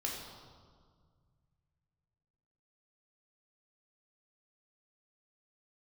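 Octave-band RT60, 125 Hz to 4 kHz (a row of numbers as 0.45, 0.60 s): 3.4, 2.3, 1.9, 1.8, 1.2, 1.3 s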